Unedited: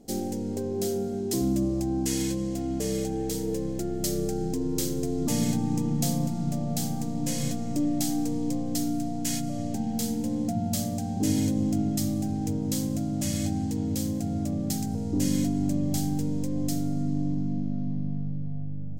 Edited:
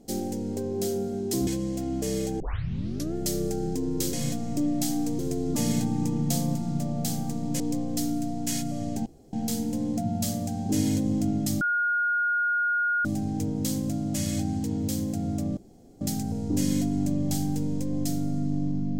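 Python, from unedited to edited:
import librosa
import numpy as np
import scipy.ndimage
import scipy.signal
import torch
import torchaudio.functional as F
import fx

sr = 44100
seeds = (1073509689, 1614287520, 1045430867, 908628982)

y = fx.edit(x, sr, fx.cut(start_s=1.47, length_s=0.78),
    fx.tape_start(start_s=3.18, length_s=0.74),
    fx.move(start_s=7.32, length_s=1.06, to_s=4.91),
    fx.insert_room_tone(at_s=9.84, length_s=0.27),
    fx.insert_tone(at_s=12.12, length_s=1.44, hz=1430.0, db=-22.0),
    fx.insert_room_tone(at_s=14.64, length_s=0.44), tone=tone)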